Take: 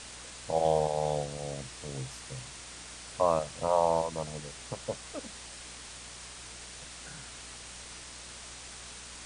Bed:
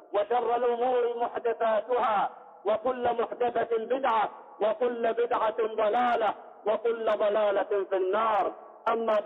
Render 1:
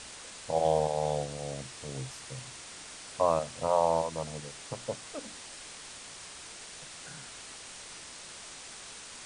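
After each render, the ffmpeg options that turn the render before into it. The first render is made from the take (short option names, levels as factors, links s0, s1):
-af "bandreject=f=60:t=h:w=4,bandreject=f=120:t=h:w=4,bandreject=f=180:t=h:w=4,bandreject=f=240:t=h:w=4,bandreject=f=300:t=h:w=4"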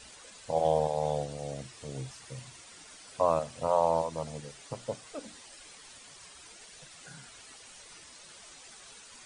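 -af "afftdn=nr=10:nf=-47"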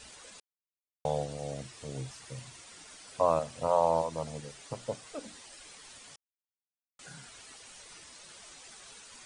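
-filter_complex "[0:a]asplit=5[s0][s1][s2][s3][s4];[s0]atrim=end=0.4,asetpts=PTS-STARTPTS,afade=t=out:st=0.396:d=0.004:c=hsin[s5];[s1]atrim=start=0.4:end=1.05,asetpts=PTS-STARTPTS,volume=0[s6];[s2]atrim=start=1.05:end=6.16,asetpts=PTS-STARTPTS,afade=t=in:d=0.004:c=hsin,afade=t=out:st=5.106:d=0.004:c=hsin[s7];[s3]atrim=start=6.16:end=6.99,asetpts=PTS-STARTPTS,volume=0[s8];[s4]atrim=start=6.99,asetpts=PTS-STARTPTS,afade=t=in:d=0.004:c=hsin[s9];[s5][s6][s7][s8][s9]concat=n=5:v=0:a=1"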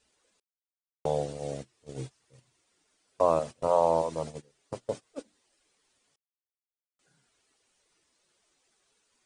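-af "agate=range=0.0794:threshold=0.0126:ratio=16:detection=peak,equalizer=f=370:t=o:w=1:g=7"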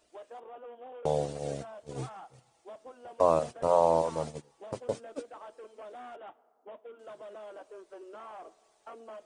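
-filter_complex "[1:a]volume=0.0944[s0];[0:a][s0]amix=inputs=2:normalize=0"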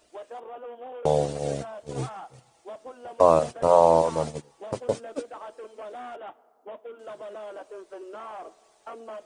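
-af "volume=2.11"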